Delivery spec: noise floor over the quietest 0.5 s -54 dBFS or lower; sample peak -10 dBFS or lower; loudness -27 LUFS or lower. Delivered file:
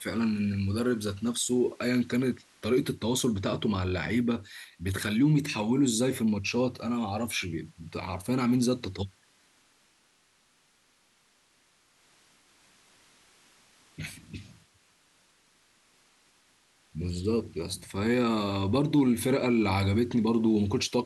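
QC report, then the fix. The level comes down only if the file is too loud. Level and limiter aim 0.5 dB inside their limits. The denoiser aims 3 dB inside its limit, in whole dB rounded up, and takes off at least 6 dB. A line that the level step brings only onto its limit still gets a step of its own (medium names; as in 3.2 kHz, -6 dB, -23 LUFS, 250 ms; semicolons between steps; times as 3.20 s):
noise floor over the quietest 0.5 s -67 dBFS: pass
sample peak -14.5 dBFS: pass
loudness -28.5 LUFS: pass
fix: none needed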